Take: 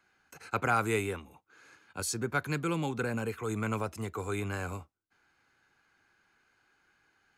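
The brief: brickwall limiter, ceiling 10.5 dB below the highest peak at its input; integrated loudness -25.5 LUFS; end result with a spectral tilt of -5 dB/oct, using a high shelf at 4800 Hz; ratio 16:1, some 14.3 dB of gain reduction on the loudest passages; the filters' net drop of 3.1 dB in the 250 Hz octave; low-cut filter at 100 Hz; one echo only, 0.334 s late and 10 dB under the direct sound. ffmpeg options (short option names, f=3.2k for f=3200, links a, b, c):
-af "highpass=100,equalizer=f=250:t=o:g=-4,highshelf=f=4.8k:g=-5.5,acompressor=threshold=-38dB:ratio=16,alimiter=level_in=11dB:limit=-24dB:level=0:latency=1,volume=-11dB,aecho=1:1:334:0.316,volume=20dB"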